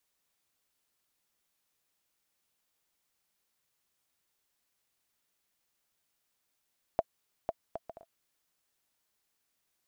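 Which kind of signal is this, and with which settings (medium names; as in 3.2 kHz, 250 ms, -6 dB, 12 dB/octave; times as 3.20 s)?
bouncing ball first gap 0.50 s, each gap 0.53, 665 Hz, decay 38 ms -14.5 dBFS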